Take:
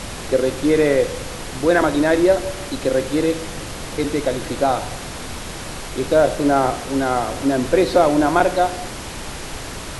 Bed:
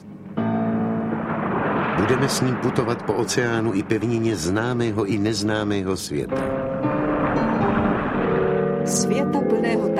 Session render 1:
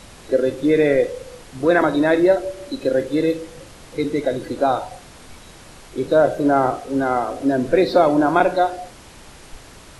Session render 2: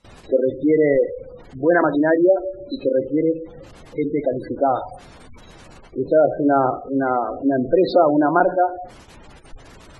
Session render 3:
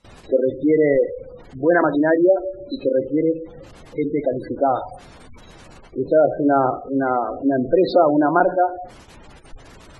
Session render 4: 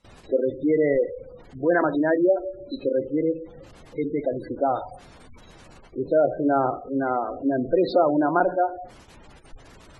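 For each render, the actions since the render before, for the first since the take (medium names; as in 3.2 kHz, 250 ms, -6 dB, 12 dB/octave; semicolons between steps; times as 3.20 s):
noise print and reduce 12 dB
gate with hold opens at -32 dBFS; spectral gate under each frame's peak -20 dB strong
no audible change
trim -4.5 dB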